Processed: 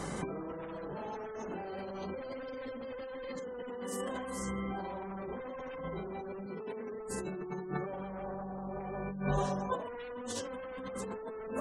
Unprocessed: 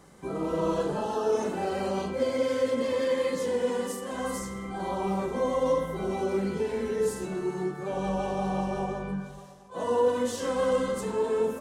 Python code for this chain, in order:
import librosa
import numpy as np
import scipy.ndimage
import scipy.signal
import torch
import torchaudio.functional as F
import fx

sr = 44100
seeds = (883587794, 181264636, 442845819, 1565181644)

p1 = 10.0 ** (-23.5 / 20.0) * np.tanh(x / 10.0 ** (-23.5 / 20.0))
p2 = x + (p1 * 10.0 ** (-9.5 / 20.0))
p3 = fx.cheby_harmonics(p2, sr, harmonics=(5, 6, 8), levels_db=(-9, -10, -12), full_scale_db=-14.0)
p4 = fx.bessel_lowpass(p3, sr, hz=1400.0, order=6, at=(8.22, 8.79), fade=0.02)
p5 = fx.echo_feedback(p4, sr, ms=200, feedback_pct=57, wet_db=-21)
p6 = fx.spec_gate(p5, sr, threshold_db=-30, keep='strong')
p7 = fx.over_compress(p6, sr, threshold_db=-33.0, ratio=-1.0)
p8 = fx.highpass(p7, sr, hz=170.0, slope=12, at=(6.46, 6.93))
y = p8 * 10.0 ** (-7.0 / 20.0)